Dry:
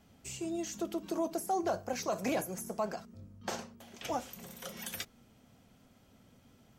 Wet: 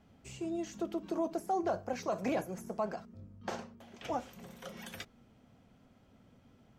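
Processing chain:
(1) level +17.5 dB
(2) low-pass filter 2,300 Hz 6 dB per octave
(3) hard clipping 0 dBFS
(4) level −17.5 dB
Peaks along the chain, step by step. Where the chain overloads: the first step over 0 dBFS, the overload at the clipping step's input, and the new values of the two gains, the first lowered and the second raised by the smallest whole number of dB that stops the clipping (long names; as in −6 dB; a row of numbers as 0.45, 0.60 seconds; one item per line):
−5.0, −5.5, −5.5, −23.0 dBFS
no step passes full scale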